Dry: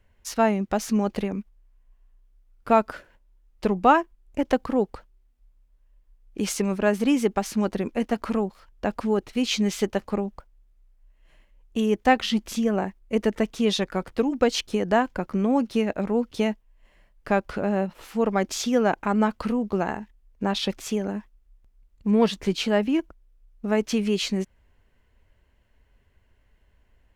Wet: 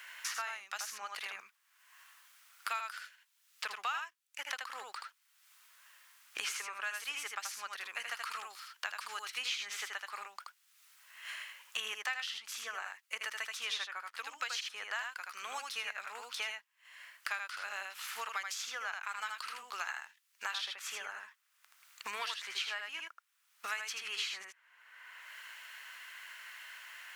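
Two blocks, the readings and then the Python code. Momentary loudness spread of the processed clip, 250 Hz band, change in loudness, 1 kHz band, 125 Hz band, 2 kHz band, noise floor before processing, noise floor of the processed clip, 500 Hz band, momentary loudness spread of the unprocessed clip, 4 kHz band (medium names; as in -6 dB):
15 LU, under -40 dB, -15.0 dB, -15.0 dB, under -40 dB, -4.5 dB, -63 dBFS, -75 dBFS, -30.5 dB, 9 LU, -6.0 dB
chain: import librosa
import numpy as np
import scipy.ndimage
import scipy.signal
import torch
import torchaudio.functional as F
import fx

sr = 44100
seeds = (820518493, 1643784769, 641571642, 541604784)

y = scipy.signal.sosfilt(scipy.signal.cheby1(3, 1.0, 1300.0, 'highpass', fs=sr, output='sos'), x)
y = y + 10.0 ** (-4.5 / 20.0) * np.pad(y, (int(78 * sr / 1000.0), 0))[:len(y)]
y = fx.band_squash(y, sr, depth_pct=100)
y = F.gain(torch.from_numpy(y), -5.0).numpy()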